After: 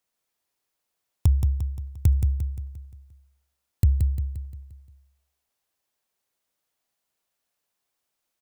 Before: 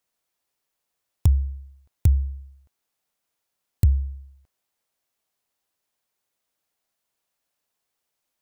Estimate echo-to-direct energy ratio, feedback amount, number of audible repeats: −5.0 dB, 48%, 5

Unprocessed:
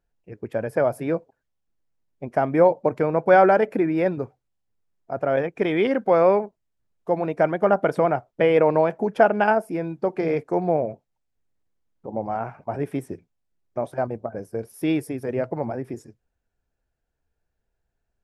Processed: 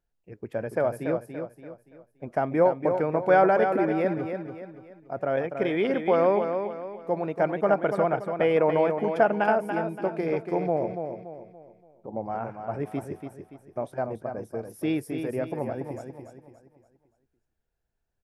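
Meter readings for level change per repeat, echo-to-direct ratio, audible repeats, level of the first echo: −8.0 dB, −6.5 dB, 4, −7.0 dB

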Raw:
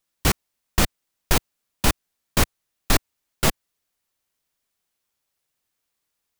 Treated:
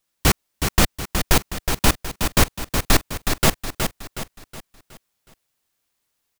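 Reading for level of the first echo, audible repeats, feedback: −6.5 dB, 4, 42%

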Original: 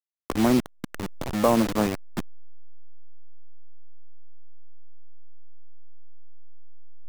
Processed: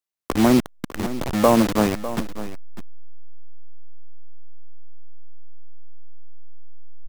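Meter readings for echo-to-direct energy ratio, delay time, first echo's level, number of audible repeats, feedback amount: −14.0 dB, 601 ms, −14.0 dB, 1, repeats not evenly spaced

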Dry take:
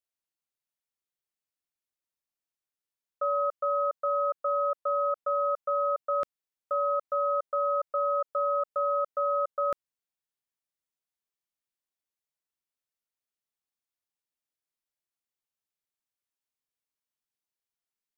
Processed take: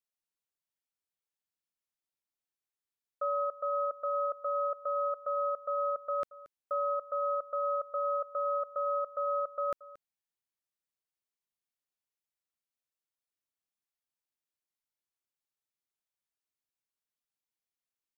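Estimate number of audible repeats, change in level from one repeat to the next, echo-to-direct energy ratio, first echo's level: 1, repeats not evenly spaced, −19.0 dB, −19.0 dB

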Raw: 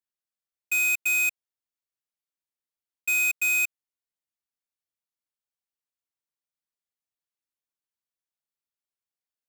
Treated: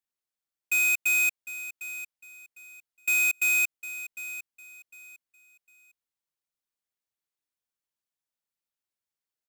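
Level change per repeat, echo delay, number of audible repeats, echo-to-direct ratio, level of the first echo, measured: −11.5 dB, 754 ms, 2, −13.5 dB, −14.0 dB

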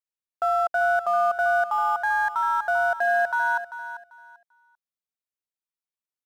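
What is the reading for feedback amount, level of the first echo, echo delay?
22%, −12.0 dB, 392 ms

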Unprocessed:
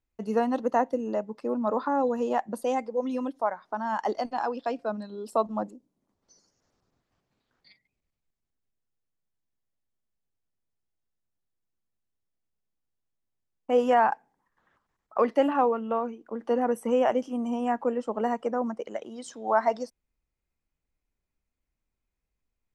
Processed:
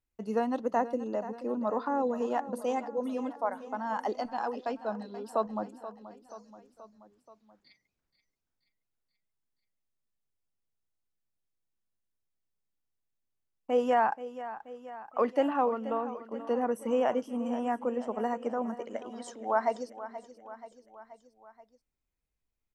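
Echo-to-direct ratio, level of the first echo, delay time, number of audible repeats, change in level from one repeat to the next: −12.0 dB, −14.0 dB, 480 ms, 4, −4.5 dB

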